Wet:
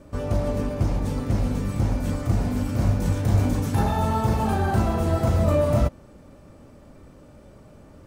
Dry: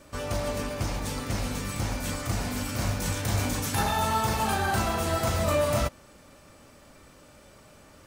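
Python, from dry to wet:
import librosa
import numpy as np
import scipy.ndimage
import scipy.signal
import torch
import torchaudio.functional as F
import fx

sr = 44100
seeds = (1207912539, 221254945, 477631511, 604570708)

y = fx.tilt_shelf(x, sr, db=8.5, hz=920.0)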